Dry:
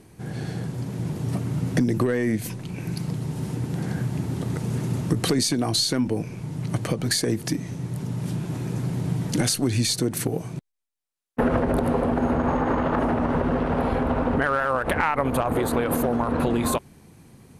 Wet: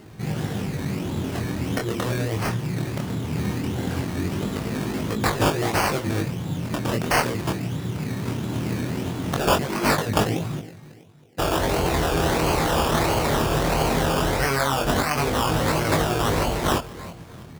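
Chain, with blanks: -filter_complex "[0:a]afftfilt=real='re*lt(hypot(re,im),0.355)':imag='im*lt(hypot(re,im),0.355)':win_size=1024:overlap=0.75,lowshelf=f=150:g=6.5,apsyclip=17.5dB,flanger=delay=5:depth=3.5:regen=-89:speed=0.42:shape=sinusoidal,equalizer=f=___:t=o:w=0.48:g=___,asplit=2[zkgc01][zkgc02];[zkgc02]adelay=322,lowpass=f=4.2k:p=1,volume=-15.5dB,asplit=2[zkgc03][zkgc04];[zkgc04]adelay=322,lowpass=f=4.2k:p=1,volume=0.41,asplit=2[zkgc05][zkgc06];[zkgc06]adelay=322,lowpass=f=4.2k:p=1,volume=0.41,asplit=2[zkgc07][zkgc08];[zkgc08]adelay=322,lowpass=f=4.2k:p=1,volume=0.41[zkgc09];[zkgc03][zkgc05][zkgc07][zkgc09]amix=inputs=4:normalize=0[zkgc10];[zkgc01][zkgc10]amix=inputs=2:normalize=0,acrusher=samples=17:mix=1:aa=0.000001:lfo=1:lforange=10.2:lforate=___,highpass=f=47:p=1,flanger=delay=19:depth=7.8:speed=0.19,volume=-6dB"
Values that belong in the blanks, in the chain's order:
11k, 9.5, 1.5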